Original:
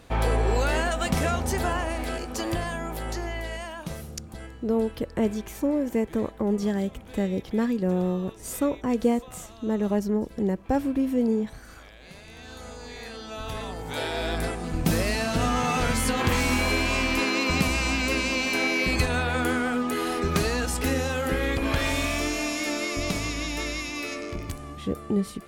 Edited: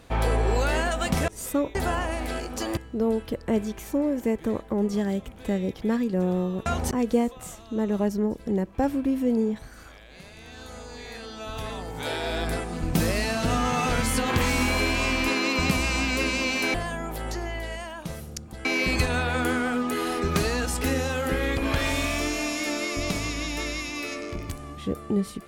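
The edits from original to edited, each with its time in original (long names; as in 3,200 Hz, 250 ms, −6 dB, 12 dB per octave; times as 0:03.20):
0:01.28–0:01.53: swap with 0:08.35–0:08.82
0:02.55–0:04.46: move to 0:18.65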